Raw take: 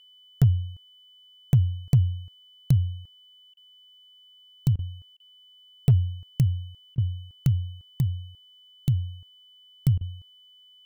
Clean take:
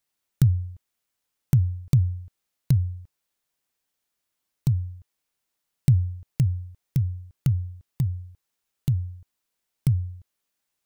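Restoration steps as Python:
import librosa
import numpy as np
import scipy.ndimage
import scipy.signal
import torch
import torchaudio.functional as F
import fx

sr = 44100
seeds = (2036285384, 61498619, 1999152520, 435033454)

y = fx.fix_declip(x, sr, threshold_db=-11.5)
y = fx.notch(y, sr, hz=3000.0, q=30.0)
y = fx.fix_interpolate(y, sr, at_s=(3.54, 4.76, 5.17, 6.95, 9.98), length_ms=28.0)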